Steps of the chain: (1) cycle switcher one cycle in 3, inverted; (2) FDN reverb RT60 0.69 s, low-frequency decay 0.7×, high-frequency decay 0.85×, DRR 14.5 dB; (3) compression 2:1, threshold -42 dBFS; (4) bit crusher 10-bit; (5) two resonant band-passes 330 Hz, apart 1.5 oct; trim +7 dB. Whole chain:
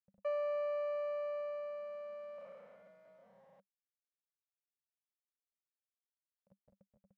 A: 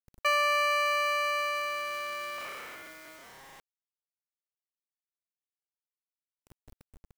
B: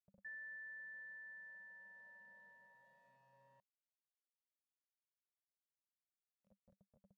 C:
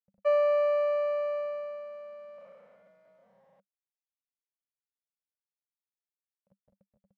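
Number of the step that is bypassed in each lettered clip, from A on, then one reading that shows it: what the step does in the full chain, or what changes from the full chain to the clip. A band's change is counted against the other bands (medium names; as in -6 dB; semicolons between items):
5, 500 Hz band -18.0 dB; 1, 500 Hz band -33.0 dB; 3, mean gain reduction 5.0 dB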